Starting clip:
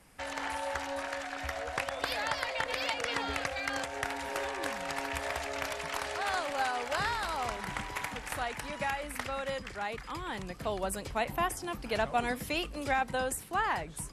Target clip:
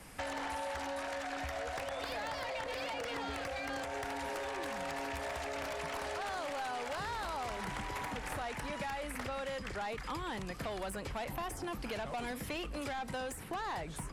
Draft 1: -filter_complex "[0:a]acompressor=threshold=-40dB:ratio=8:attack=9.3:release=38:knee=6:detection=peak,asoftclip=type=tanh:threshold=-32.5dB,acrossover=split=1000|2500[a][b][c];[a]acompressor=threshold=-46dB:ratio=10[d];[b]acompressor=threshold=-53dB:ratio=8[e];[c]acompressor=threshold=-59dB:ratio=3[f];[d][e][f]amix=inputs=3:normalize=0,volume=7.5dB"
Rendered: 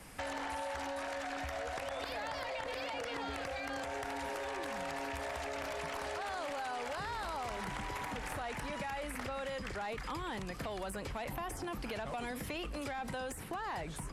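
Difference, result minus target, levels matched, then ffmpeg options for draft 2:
compressor: peak gain reduction +8 dB
-filter_complex "[0:a]acompressor=threshold=-31dB:ratio=8:attack=9.3:release=38:knee=6:detection=peak,asoftclip=type=tanh:threshold=-32.5dB,acrossover=split=1000|2500[a][b][c];[a]acompressor=threshold=-46dB:ratio=10[d];[b]acompressor=threshold=-53dB:ratio=8[e];[c]acompressor=threshold=-59dB:ratio=3[f];[d][e][f]amix=inputs=3:normalize=0,volume=7.5dB"

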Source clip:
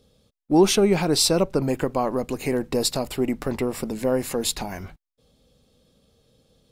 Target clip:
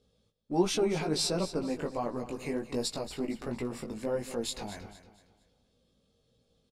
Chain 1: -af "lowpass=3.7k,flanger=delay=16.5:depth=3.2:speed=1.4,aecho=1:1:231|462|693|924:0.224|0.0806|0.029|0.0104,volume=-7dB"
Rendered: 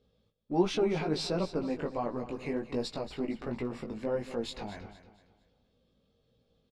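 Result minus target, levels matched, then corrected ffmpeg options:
8000 Hz band -10.5 dB
-af "lowpass=9.5k,flanger=delay=16.5:depth=3.2:speed=1.4,aecho=1:1:231|462|693|924:0.224|0.0806|0.029|0.0104,volume=-7dB"

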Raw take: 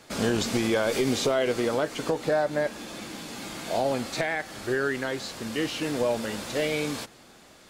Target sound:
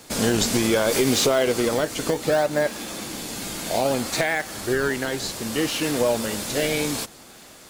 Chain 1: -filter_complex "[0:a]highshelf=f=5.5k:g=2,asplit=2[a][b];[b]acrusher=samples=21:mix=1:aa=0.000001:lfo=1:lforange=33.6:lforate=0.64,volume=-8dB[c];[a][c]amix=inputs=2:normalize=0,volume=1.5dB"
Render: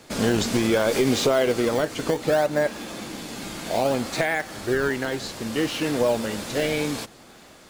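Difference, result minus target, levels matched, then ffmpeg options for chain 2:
8000 Hz band -5.5 dB
-filter_complex "[0:a]highshelf=f=5.5k:g=13,asplit=2[a][b];[b]acrusher=samples=21:mix=1:aa=0.000001:lfo=1:lforange=33.6:lforate=0.64,volume=-8dB[c];[a][c]amix=inputs=2:normalize=0,volume=1.5dB"

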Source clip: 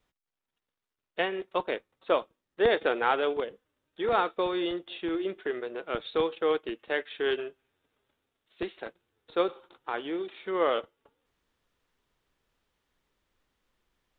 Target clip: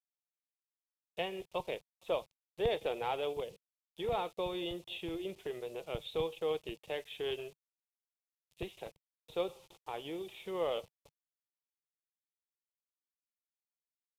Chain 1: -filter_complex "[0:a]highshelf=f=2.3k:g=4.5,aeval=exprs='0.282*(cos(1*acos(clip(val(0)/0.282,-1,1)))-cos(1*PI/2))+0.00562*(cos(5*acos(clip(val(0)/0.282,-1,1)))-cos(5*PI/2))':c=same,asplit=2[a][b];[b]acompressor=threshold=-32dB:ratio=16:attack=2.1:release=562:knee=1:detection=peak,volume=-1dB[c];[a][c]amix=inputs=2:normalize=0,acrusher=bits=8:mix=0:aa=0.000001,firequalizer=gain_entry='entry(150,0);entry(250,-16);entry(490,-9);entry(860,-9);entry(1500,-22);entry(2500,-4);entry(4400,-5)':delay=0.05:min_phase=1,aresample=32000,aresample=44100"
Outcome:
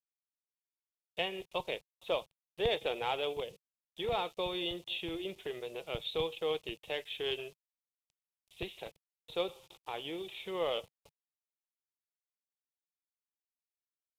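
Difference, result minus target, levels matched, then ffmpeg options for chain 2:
4000 Hz band +5.0 dB
-filter_complex "[0:a]highshelf=f=2.3k:g=-5.5,aeval=exprs='0.282*(cos(1*acos(clip(val(0)/0.282,-1,1)))-cos(1*PI/2))+0.00562*(cos(5*acos(clip(val(0)/0.282,-1,1)))-cos(5*PI/2))':c=same,asplit=2[a][b];[b]acompressor=threshold=-32dB:ratio=16:attack=2.1:release=562:knee=1:detection=peak,volume=-1dB[c];[a][c]amix=inputs=2:normalize=0,acrusher=bits=8:mix=0:aa=0.000001,firequalizer=gain_entry='entry(150,0);entry(250,-16);entry(490,-9);entry(860,-9);entry(1500,-22);entry(2500,-4);entry(4400,-5)':delay=0.05:min_phase=1,aresample=32000,aresample=44100"

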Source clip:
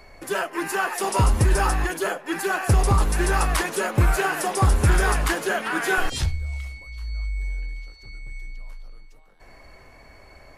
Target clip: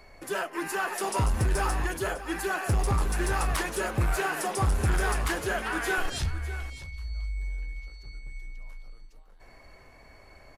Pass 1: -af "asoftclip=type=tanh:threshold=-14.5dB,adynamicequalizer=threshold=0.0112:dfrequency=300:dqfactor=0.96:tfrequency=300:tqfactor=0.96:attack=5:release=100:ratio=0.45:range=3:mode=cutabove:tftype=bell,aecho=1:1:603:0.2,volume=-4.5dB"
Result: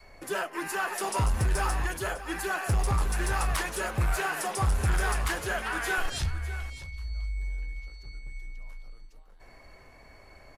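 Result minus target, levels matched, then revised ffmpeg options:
250 Hz band -3.0 dB
-af "asoftclip=type=tanh:threshold=-14.5dB,aecho=1:1:603:0.2,volume=-4.5dB"

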